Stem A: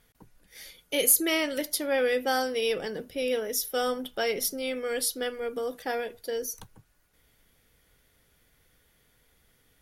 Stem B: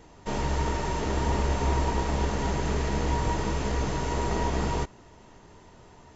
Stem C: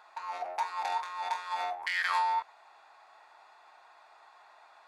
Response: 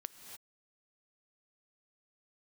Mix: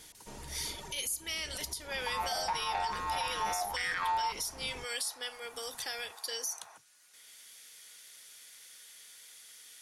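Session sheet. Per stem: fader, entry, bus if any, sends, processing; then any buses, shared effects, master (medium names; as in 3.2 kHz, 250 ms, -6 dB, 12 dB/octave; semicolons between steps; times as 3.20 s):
-9.5 dB, 0.00 s, bus A, send -21.5 dB, frequency weighting ITU-R 468; three bands compressed up and down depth 40%
-10.0 dB, 0.00 s, bus A, no send, reverb removal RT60 1.5 s; level rider gain up to 12 dB; peak limiter -18.5 dBFS, peak gain reduction 13.5 dB; auto duck -10 dB, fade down 0.30 s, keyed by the first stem
+3.0 dB, 1.90 s, no bus, no send, low-pass 3.4 kHz
bus A: 0.0 dB, treble shelf 4.7 kHz +8.5 dB; compression 12:1, threshold -31 dBFS, peak gain reduction 16 dB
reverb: on, pre-delay 3 ms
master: peak limiter -24.5 dBFS, peak gain reduction 9.5 dB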